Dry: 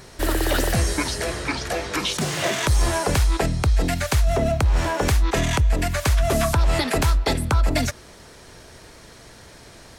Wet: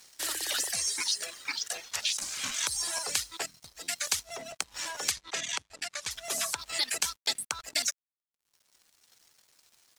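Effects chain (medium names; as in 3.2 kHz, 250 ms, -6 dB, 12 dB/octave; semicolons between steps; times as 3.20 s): reverb removal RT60 1.9 s; 3.57–3.98 s: compression 4:1, threshold -19 dBFS, peak gain reduction 4 dB; band-pass filter 6.7 kHz, Q 0.96; crossover distortion -54 dBFS; 1.84–2.54 s: ring modulator 420 Hz; 5.11–6.11 s: distance through air 64 m; crackling interface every 0.11 s, samples 512, repeat, from 0.87 s; trim +4.5 dB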